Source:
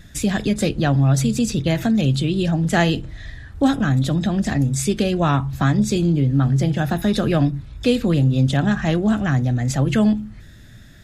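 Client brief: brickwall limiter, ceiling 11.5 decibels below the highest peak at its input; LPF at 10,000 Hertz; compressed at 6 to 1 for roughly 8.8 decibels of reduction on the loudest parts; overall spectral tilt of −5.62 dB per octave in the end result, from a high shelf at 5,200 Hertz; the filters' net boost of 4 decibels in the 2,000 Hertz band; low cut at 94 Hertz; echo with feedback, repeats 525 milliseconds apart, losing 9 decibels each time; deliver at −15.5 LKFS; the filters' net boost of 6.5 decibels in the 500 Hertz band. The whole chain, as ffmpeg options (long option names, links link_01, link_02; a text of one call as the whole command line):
ffmpeg -i in.wav -af "highpass=94,lowpass=10000,equalizer=frequency=500:width_type=o:gain=8,equalizer=frequency=2000:width_type=o:gain=4,highshelf=frequency=5200:gain=4,acompressor=threshold=-17dB:ratio=6,alimiter=limit=-18.5dB:level=0:latency=1,aecho=1:1:525|1050|1575|2100:0.355|0.124|0.0435|0.0152,volume=11dB" out.wav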